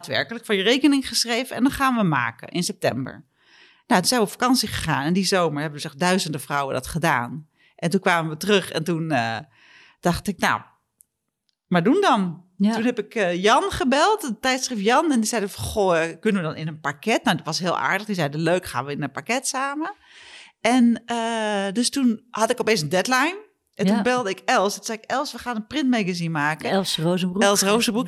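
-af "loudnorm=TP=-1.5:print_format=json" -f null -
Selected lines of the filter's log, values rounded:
"input_i" : "-21.9",
"input_tp" : "-5.3",
"input_lra" : "3.0",
"input_thresh" : "-32.2",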